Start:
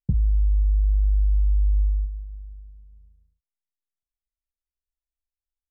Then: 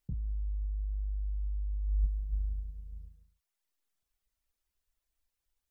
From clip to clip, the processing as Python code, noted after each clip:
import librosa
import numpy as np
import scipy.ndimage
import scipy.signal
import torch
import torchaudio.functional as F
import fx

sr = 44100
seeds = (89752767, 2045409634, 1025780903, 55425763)

y = fx.dereverb_blind(x, sr, rt60_s=0.69)
y = fx.over_compress(y, sr, threshold_db=-32.0, ratio=-1.0)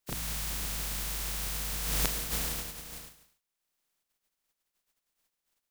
y = fx.spec_flatten(x, sr, power=0.27)
y = fx.peak_eq(y, sr, hz=73.0, db=-6.5, octaves=0.64)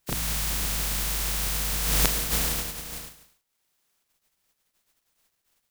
y = fx.quant_companded(x, sr, bits=8)
y = y * librosa.db_to_amplitude(7.0)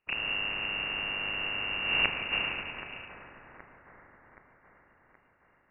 y = fx.echo_split(x, sr, split_hz=730.0, low_ms=169, high_ms=774, feedback_pct=52, wet_db=-11)
y = fx.freq_invert(y, sr, carrier_hz=2800)
y = y * librosa.db_to_amplitude(-2.5)